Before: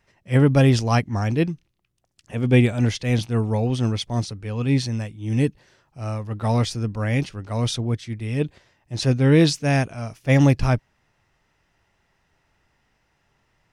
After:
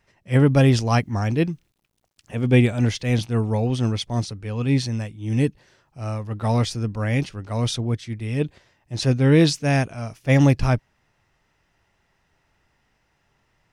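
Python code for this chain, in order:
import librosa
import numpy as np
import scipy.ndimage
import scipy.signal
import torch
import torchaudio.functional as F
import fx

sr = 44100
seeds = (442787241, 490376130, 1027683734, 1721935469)

y = fx.quant_dither(x, sr, seeds[0], bits=12, dither='none', at=(0.91, 3.12))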